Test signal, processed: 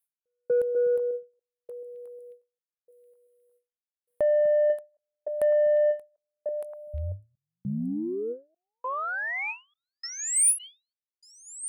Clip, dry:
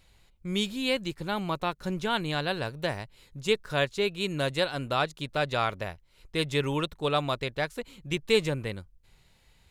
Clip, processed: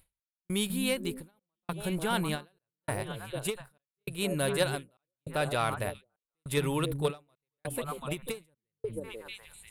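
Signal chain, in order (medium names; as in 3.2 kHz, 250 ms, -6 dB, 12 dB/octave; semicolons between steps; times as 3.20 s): resonant high shelf 7.9 kHz +10 dB, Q 3; repeats whose band climbs or falls 246 ms, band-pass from 160 Hz, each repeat 1.4 oct, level -3 dB; in parallel at -1 dB: level held to a coarse grid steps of 12 dB; on the sum: saturation -12 dBFS; trance gate "xx...xxxxxxx" 151 bpm -60 dB; endings held to a fixed fall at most 240 dB/s; trim -3.5 dB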